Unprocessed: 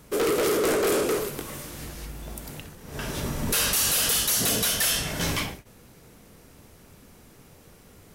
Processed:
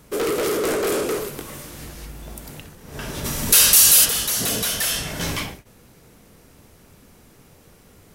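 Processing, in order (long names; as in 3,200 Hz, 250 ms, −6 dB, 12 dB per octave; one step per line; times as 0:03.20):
0:03.24–0:04.04: high-shelf EQ 2,000 Hz → 3,700 Hz +12 dB
level +1 dB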